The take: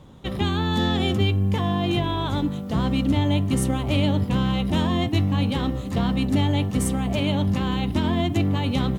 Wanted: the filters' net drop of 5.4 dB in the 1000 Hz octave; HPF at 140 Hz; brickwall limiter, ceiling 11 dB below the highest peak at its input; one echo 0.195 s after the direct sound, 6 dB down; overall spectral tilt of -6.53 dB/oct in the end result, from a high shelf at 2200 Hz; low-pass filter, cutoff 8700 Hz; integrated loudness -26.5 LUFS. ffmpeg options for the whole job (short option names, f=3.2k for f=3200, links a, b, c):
-af "highpass=140,lowpass=8.7k,equalizer=f=1k:t=o:g=-5.5,highshelf=f=2.2k:g=-8,alimiter=limit=-24dB:level=0:latency=1,aecho=1:1:195:0.501,volume=4dB"